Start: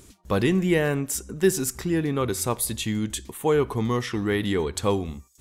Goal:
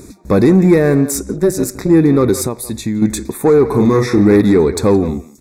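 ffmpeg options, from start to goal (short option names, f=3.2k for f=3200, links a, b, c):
-filter_complex "[0:a]asplit=2[a][b];[b]alimiter=limit=-16dB:level=0:latency=1:release=288,volume=2dB[c];[a][c]amix=inputs=2:normalize=0,asettb=1/sr,asplit=3[d][e][f];[d]atrim=end=3.674[g];[e]atrim=start=3.67:end=4.41,asetpts=PTS-STARTPTS,afade=t=in:d=0.004:c=qsin,afade=t=out:st=0.736:d=0.004:c=qsin,asplit=2[h][i];[i]adelay=39,volume=-4.5dB[j];[h][j]amix=inputs=2:normalize=0,atrim=end_sample=32634[k];[f]atrim=start=4.406[l];[g][k]acrossfade=d=0.004:c1=hsin:c2=qsin[m];[m][l]acrossfade=d=0.004:c1=qsin:c2=hsin,asplit=2[n][o];[o]adelay=170,highpass=300,lowpass=3.4k,asoftclip=type=hard:threshold=-13.5dB,volume=-14dB[p];[n][p]amix=inputs=2:normalize=0,asplit=3[q][r][s];[q]afade=t=out:st=1.31:d=0.02[t];[r]tremolo=f=200:d=0.889,afade=t=in:st=1.31:d=0.02,afade=t=out:st=1.89:d=0.02[u];[s]afade=t=in:st=1.89:d=0.02[v];[t][u][v]amix=inputs=3:normalize=0,asettb=1/sr,asplit=3[w][x][y];[w]atrim=end=2.454[z];[x]atrim=start=2.45:end=3.02,asetpts=PTS-STARTPTS,afade=t=in:d=0.004:c=qsin,afade=t=out:st=0.566:d=0.004:c=qsin,acompressor=threshold=-25dB:ratio=6[aa];[y]atrim=start=3.016[ab];[z][aa]acrossfade=d=0.004:c1=hsin:c2=qsin[ac];[ac][ab]acrossfade=d=0.004:c1=qsin:c2=hsin,asoftclip=type=tanh:threshold=-13.5dB,asuperstop=centerf=3000:order=8:qfactor=3.1,equalizer=f=280:t=o:w=2.4:g=9.5,volume=2dB"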